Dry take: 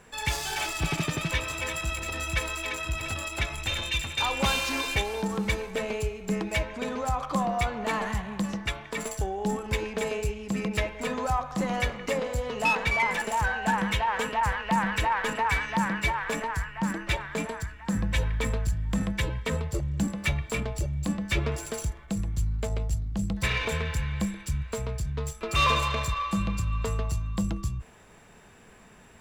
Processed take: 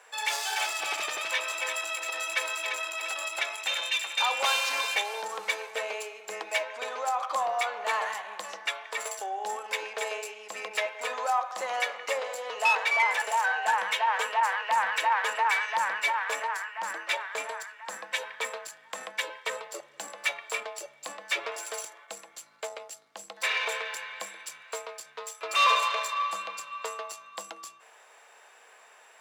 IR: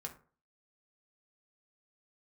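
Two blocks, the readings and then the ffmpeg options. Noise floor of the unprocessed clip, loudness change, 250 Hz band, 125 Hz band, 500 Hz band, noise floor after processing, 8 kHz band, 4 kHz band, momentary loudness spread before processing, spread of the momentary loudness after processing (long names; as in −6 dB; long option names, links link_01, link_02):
−52 dBFS, −0.5 dB, below −25 dB, below −40 dB, −3.5 dB, −56 dBFS, +0.5 dB, +1.0 dB, 7 LU, 15 LU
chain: -filter_complex "[0:a]highpass=frequency=560:width=0.5412,highpass=frequency=560:width=1.3066,highshelf=frequency=11000:gain=-3.5,asplit=2[link_01][link_02];[1:a]atrim=start_sample=2205[link_03];[link_02][link_03]afir=irnorm=-1:irlink=0,volume=-9.5dB[link_04];[link_01][link_04]amix=inputs=2:normalize=0"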